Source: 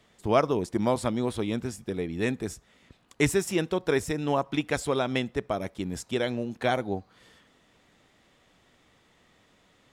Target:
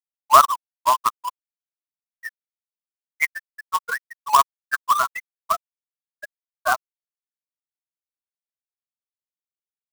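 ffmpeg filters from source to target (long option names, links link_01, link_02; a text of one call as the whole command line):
ffmpeg -i in.wav -af "highpass=frequency=1100:width_type=q:width=4.2,afftfilt=real='re*gte(hypot(re,im),0.224)':imag='im*gte(hypot(re,im),0.224)':win_size=1024:overlap=0.75,acrusher=bits=2:mode=log:mix=0:aa=0.000001,volume=7.5dB" out.wav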